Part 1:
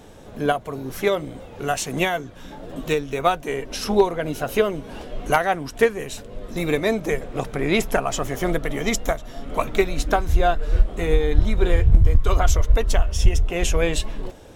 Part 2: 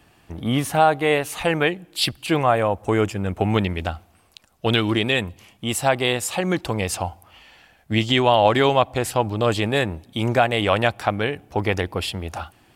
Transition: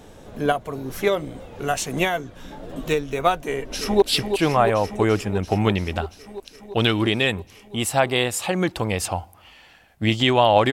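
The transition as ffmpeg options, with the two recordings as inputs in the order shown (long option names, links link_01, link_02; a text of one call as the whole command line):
ffmpeg -i cue0.wav -i cue1.wav -filter_complex "[0:a]apad=whole_dur=10.72,atrim=end=10.72,atrim=end=4.022[link_01];[1:a]atrim=start=1.908:end=8.61[link_02];[link_01][link_02]acrossfade=duration=0.004:curve1=hsin:curve2=hsin,asplit=2[link_03][link_04];[link_04]afade=type=in:start_time=3.4:duration=0.01,afade=type=out:start_time=4.02:duration=0.01,aecho=0:1:340|680|1020|1360|1700|2040|2380|2720|3060|3400|3740|4080:0.421697|0.337357|0.269886|0.215909|0.172727|0.138182|0.110545|0.0884362|0.0707489|0.0565991|0.0452793|0.0362235[link_05];[link_03][link_05]amix=inputs=2:normalize=0" out.wav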